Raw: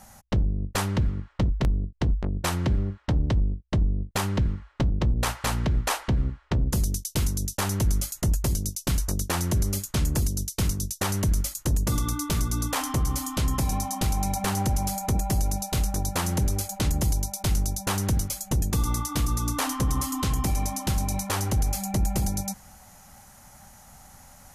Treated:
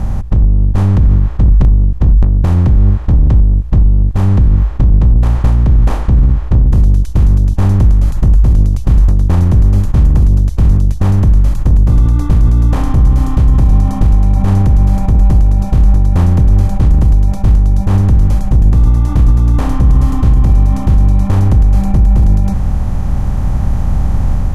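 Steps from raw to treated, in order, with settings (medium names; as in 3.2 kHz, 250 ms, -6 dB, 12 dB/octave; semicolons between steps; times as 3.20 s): spectral levelling over time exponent 0.4; tilt EQ -4.5 dB/octave; peak limiter -2 dBFS, peak gain reduction 9 dB; level rider; trim -1 dB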